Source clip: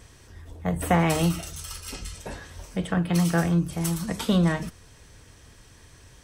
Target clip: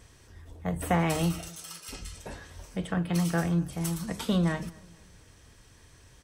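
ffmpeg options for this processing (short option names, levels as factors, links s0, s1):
-filter_complex "[0:a]asettb=1/sr,asplit=3[s0][s1][s2];[s0]atrim=end=1.484[s3];[s1]atrim=start=1.48:end=1.89,asetpts=PTS-STARTPTS,afade=t=in:d=0.004:c=qsin,afade=t=out:st=0.406:d=0.004:c=qsin,highpass=370[s4];[s2]atrim=start=1.886[s5];[s3][s4]acrossfade=d=0.004:c1=hsin:c2=qsin[s6];[s6][s5]acrossfade=d=0.004:c1=qsin:c2=hsin,asplit=2[s7][s8];[s8]adelay=235,lowpass=f=2000:p=1,volume=0.0708,asplit=2[s9][s10];[s10]adelay=235,lowpass=f=2000:p=1,volume=0.38,asplit=2[s11][s12];[s12]adelay=235,lowpass=f=2000:p=1,volume=0.38[s13];[s7][s9][s11][s13]amix=inputs=4:normalize=0,volume=0.596"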